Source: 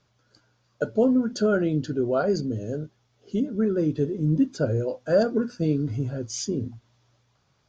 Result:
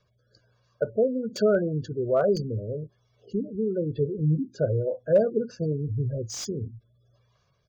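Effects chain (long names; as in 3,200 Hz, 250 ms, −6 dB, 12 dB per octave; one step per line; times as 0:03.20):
rotating-speaker cabinet horn 1.2 Hz
gate on every frequency bin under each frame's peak −25 dB strong
comb filter 1.8 ms, depth 65%
0:04.42–0:05.37: low-pass filter 2,200 Hz 6 dB per octave
slew-rate limiting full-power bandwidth 130 Hz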